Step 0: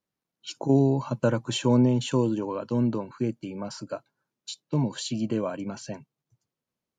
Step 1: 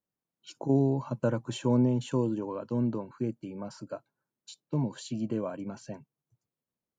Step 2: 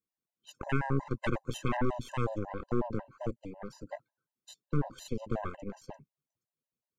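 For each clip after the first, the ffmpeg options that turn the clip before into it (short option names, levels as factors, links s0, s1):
-af "equalizer=f=4100:w=0.5:g=-7,volume=0.631"
-af "aeval=exprs='0.2*(cos(1*acos(clip(val(0)/0.2,-1,1)))-cos(1*PI/2))+0.0224*(cos(5*acos(clip(val(0)/0.2,-1,1)))-cos(5*PI/2))+0.0891*(cos(8*acos(clip(val(0)/0.2,-1,1)))-cos(8*PI/2))':c=same,afftfilt=real='re*gt(sin(2*PI*5.5*pts/sr)*(1-2*mod(floor(b*sr/1024/520),2)),0)':imag='im*gt(sin(2*PI*5.5*pts/sr)*(1-2*mod(floor(b*sr/1024/520),2)),0)':win_size=1024:overlap=0.75,volume=0.473"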